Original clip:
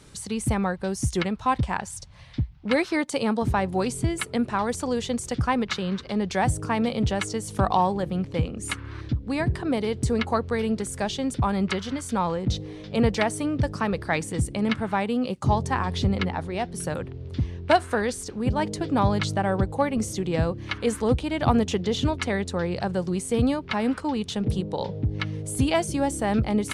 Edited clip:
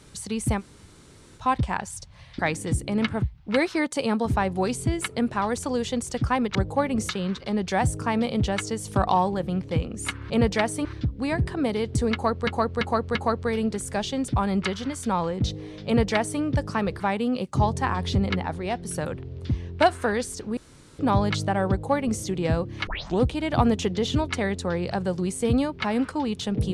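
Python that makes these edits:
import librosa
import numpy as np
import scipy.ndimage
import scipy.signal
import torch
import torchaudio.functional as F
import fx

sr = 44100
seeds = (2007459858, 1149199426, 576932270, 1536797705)

y = fx.edit(x, sr, fx.room_tone_fill(start_s=0.59, length_s=0.8, crossfade_s=0.06),
    fx.repeat(start_s=10.21, length_s=0.34, count=4),
    fx.duplicate(start_s=12.92, length_s=0.55, to_s=8.93),
    fx.move(start_s=14.06, length_s=0.83, to_s=2.39),
    fx.room_tone_fill(start_s=18.46, length_s=0.42),
    fx.duplicate(start_s=19.57, length_s=0.54, to_s=5.72),
    fx.tape_start(start_s=20.76, length_s=0.33), tone=tone)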